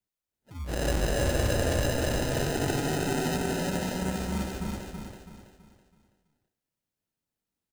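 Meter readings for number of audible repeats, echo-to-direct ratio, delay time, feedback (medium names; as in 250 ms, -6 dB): 4, -3.0 dB, 328 ms, 39%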